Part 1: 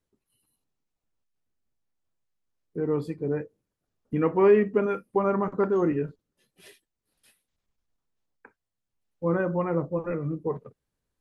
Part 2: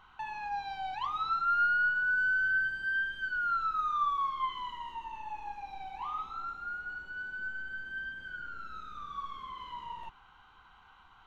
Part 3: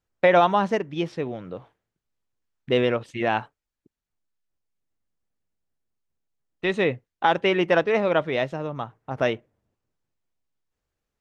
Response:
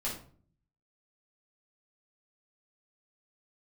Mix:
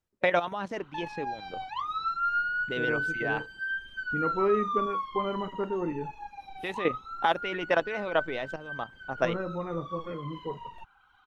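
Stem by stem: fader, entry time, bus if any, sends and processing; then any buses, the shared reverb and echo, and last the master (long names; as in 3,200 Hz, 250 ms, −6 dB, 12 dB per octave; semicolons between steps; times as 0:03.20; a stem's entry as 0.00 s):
−7.5 dB, 0.00 s, no send, no processing
+1.5 dB, 0.75 s, no send, reverb reduction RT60 1.7 s
0.0 dB, 0.00 s, no send, harmonic and percussive parts rebalanced harmonic −8 dB; output level in coarse steps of 11 dB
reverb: not used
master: no processing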